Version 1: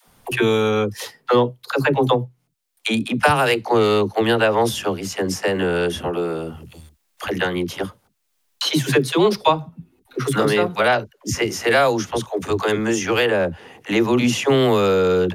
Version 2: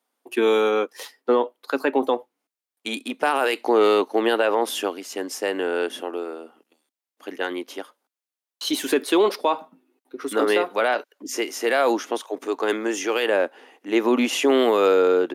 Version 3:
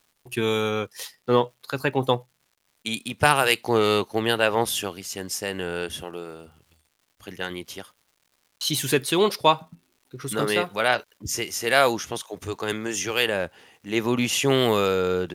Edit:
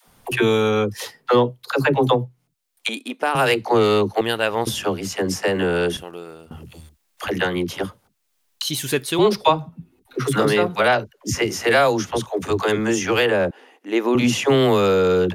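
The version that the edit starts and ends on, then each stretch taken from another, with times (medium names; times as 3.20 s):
1
2.89–3.35 s: from 2
4.21–4.67 s: from 3
5.97–6.51 s: from 3
8.62–9.19 s: from 3
13.51–14.15 s: from 2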